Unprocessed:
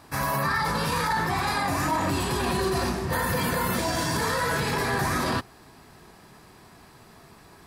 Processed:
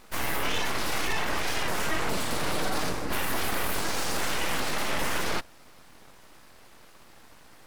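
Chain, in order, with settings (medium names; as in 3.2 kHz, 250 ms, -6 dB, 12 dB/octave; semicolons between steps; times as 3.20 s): full-wave rectifier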